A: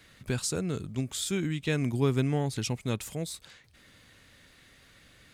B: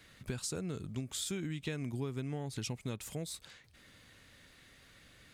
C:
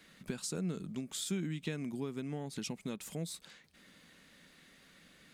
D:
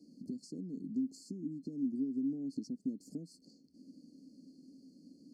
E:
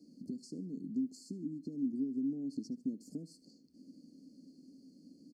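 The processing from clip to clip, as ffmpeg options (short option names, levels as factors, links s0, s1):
-af "acompressor=threshold=0.0251:ratio=6,volume=0.75"
-af "lowshelf=f=140:t=q:w=3:g=-7,volume=0.891"
-filter_complex "[0:a]afftfilt=real='re*(1-between(b*sr/4096,870,4200))':imag='im*(1-between(b*sr/4096,870,4200))':win_size=4096:overlap=0.75,acompressor=threshold=0.00562:ratio=6,asplit=3[s0][s1][s2];[s0]bandpass=f=270:t=q:w=8,volume=1[s3];[s1]bandpass=f=2290:t=q:w=8,volume=0.501[s4];[s2]bandpass=f=3010:t=q:w=8,volume=0.355[s5];[s3][s4][s5]amix=inputs=3:normalize=0,volume=7.5"
-af "aecho=1:1:74|148|222:0.112|0.0393|0.0137"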